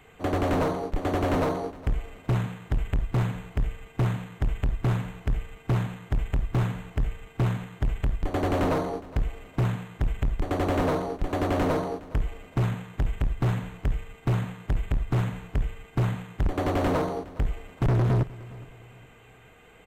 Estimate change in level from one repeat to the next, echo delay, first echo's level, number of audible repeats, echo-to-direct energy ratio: -8.5 dB, 0.413 s, -19.5 dB, 2, -19.0 dB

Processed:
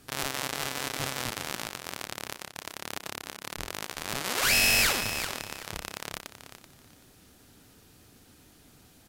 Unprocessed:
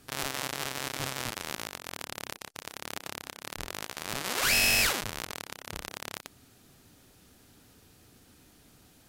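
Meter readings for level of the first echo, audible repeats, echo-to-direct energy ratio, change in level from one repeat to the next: -11.0 dB, 2, -11.0 dB, -13.5 dB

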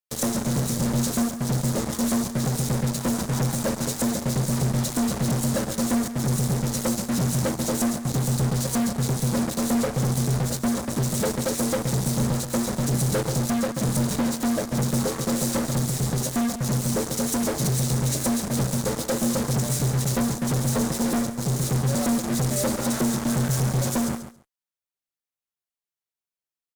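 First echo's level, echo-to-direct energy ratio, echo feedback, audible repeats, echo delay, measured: -11.0 dB, -11.0 dB, 15%, 2, 0.138 s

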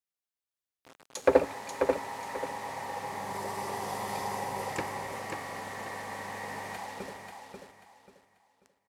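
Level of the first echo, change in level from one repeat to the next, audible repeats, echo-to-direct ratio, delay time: -5.5 dB, -11.0 dB, 3, -5.0 dB, 0.538 s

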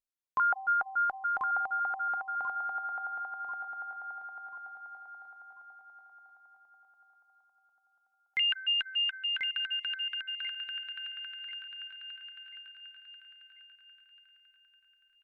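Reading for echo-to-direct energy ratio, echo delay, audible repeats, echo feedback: -4.0 dB, 1.039 s, 4, 40%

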